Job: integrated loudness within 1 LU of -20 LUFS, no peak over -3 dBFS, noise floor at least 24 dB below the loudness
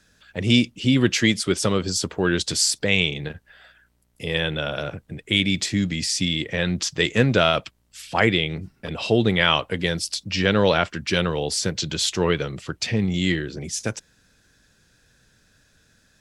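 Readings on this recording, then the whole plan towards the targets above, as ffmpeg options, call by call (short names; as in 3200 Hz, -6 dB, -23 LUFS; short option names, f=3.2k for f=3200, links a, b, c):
loudness -22.0 LUFS; peak -2.5 dBFS; loudness target -20.0 LUFS
-> -af "volume=2dB,alimiter=limit=-3dB:level=0:latency=1"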